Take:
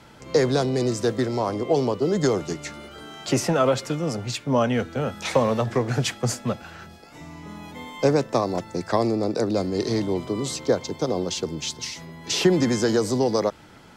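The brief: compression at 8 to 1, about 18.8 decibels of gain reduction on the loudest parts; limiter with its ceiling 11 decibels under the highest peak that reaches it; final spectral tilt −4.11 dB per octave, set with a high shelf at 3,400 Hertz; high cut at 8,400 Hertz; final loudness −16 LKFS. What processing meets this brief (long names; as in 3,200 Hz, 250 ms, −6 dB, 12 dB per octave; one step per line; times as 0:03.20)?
low-pass filter 8,400 Hz
high-shelf EQ 3,400 Hz +8.5 dB
downward compressor 8 to 1, threshold −34 dBFS
level +23.5 dB
brickwall limiter −6 dBFS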